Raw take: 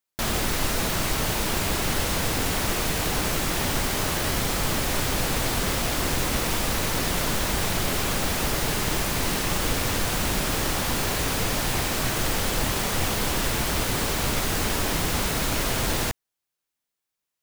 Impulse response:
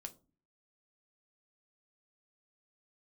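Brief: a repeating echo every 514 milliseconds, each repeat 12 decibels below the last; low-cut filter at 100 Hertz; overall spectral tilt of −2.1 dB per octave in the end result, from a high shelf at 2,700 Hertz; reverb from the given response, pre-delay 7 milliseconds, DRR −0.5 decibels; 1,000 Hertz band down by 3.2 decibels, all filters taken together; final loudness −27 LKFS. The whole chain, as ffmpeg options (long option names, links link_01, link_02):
-filter_complex "[0:a]highpass=100,equalizer=frequency=1000:width_type=o:gain=-5,highshelf=frequency=2700:gain=5,aecho=1:1:514|1028|1542:0.251|0.0628|0.0157,asplit=2[link_01][link_02];[1:a]atrim=start_sample=2205,adelay=7[link_03];[link_02][link_03]afir=irnorm=-1:irlink=0,volume=5.5dB[link_04];[link_01][link_04]amix=inputs=2:normalize=0,volume=-8.5dB"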